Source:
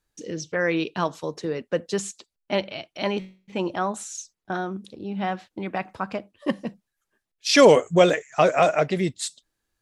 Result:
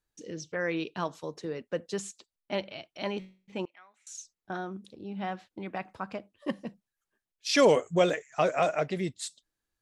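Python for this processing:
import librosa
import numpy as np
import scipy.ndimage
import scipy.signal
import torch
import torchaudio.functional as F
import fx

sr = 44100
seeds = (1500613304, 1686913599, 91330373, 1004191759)

y = fx.bandpass_q(x, sr, hz=2200.0, q=8.1, at=(3.65, 4.07))
y = F.gain(torch.from_numpy(y), -7.5).numpy()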